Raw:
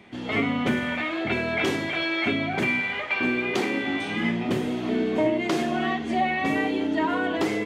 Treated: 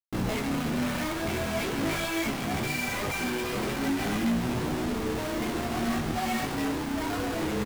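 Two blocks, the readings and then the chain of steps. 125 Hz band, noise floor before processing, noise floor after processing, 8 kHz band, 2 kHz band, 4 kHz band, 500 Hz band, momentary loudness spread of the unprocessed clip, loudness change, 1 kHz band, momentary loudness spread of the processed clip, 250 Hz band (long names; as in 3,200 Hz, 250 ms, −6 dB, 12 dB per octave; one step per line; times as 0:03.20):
+1.5 dB, −32 dBFS, −32 dBFS, +7.5 dB, −7.0 dB, −3.0 dB, −5.0 dB, 3 LU, −4.5 dB, −4.0 dB, 2 LU, −3.5 dB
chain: high-shelf EQ 4,500 Hz −7 dB
double-tracking delay 14 ms −11.5 dB
single-tap delay 78 ms −23.5 dB
in parallel at −11 dB: sample-rate reduction 3,100 Hz
on the sum: mains-hum notches 50/100/150/200/250/300/350/400/450/500 Hz
brickwall limiter −18.5 dBFS, peak gain reduction 6 dB
comparator with hysteresis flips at −37 dBFS
bass and treble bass +6 dB, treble −1 dB
micro pitch shift up and down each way 17 cents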